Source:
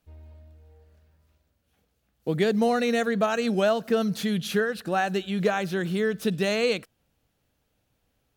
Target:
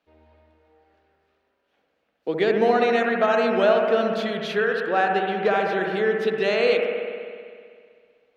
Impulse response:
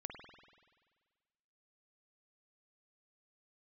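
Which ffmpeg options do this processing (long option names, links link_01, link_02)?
-filter_complex "[0:a]asettb=1/sr,asplit=3[link_01][link_02][link_03];[link_01]atrim=end=4.864[link_04];[link_02]atrim=start=4.86:end=5.63,asetpts=PTS-STARTPTS,afade=type=in:duration=0.004:curve=qsin,afade=type=out:start_time=0.766:duration=0.004:curve=qsin,adynamicsmooth=sensitivity=7:basefreq=2700[link_05];[link_03]atrim=start=5.626[link_06];[link_04][link_05]acrossfade=duration=0.004:curve1=hsin:curve2=qsin[link_07];[link_07][link_06]acrossfade=duration=0.004:curve1=qsin:curve2=hsin,acrossover=split=270 4400:gain=0.0708 1 0.0708[link_08][link_09][link_10];[link_08][link_09][link_10]amix=inputs=3:normalize=0[link_11];[1:a]atrim=start_sample=2205,asetrate=33516,aresample=44100[link_12];[link_11][link_12]afir=irnorm=-1:irlink=0,volume=7dB"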